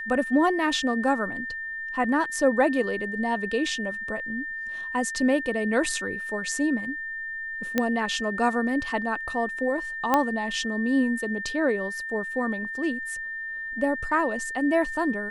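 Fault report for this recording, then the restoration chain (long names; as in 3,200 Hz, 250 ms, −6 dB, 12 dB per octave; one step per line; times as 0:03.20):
whistle 1,800 Hz −31 dBFS
0:07.78: click −9 dBFS
0:10.14: click −8 dBFS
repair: click removal
notch filter 1,800 Hz, Q 30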